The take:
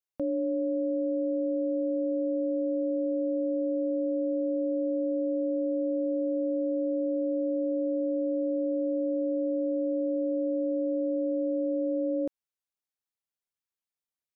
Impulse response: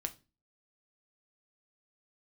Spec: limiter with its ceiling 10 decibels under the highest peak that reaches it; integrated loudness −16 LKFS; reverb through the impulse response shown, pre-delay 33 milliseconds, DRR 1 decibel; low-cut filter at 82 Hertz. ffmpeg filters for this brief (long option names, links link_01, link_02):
-filter_complex "[0:a]highpass=82,alimiter=level_in=8.5dB:limit=-24dB:level=0:latency=1,volume=-8.5dB,asplit=2[link_01][link_02];[1:a]atrim=start_sample=2205,adelay=33[link_03];[link_02][link_03]afir=irnorm=-1:irlink=0,volume=-0.5dB[link_04];[link_01][link_04]amix=inputs=2:normalize=0,volume=25dB"